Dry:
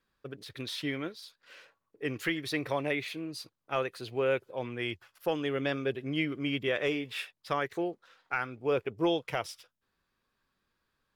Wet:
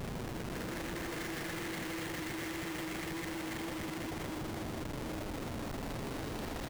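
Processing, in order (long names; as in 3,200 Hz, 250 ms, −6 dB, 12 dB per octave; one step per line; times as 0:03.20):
wind on the microphone 420 Hz −33 dBFS
on a send: single-tap delay 103 ms −18 dB
on the sum: extreme stretch with random phases 39×, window 0.25 s, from 0:02.19
comparator with hysteresis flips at −35 dBFS
time stretch by overlap-add 0.6×, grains 81 ms
level −6.5 dB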